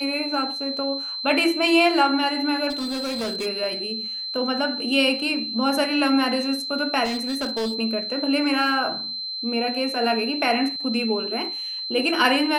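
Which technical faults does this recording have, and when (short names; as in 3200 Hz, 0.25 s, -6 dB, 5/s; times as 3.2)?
tone 4100 Hz -28 dBFS
2.69–3.47 clipped -24 dBFS
7.04–7.79 clipped -22 dBFS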